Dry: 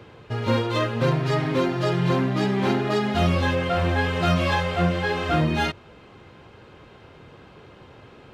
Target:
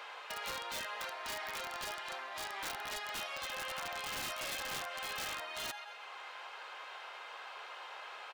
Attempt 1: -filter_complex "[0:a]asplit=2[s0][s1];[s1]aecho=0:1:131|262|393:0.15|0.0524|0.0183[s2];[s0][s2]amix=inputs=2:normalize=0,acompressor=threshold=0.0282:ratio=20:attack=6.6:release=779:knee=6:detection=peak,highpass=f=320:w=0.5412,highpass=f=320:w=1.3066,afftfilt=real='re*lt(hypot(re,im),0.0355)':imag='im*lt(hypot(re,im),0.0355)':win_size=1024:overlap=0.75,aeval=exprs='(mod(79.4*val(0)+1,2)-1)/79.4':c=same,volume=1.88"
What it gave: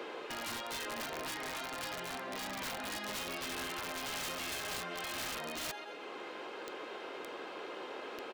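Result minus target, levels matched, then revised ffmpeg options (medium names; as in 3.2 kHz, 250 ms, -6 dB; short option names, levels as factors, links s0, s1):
250 Hz band +10.5 dB
-filter_complex "[0:a]asplit=2[s0][s1];[s1]aecho=0:1:131|262|393:0.15|0.0524|0.0183[s2];[s0][s2]amix=inputs=2:normalize=0,acompressor=threshold=0.0282:ratio=20:attack=6.6:release=779:knee=6:detection=peak,highpass=f=750:w=0.5412,highpass=f=750:w=1.3066,afftfilt=real='re*lt(hypot(re,im),0.0355)':imag='im*lt(hypot(re,im),0.0355)':win_size=1024:overlap=0.75,aeval=exprs='(mod(79.4*val(0)+1,2)-1)/79.4':c=same,volume=1.88"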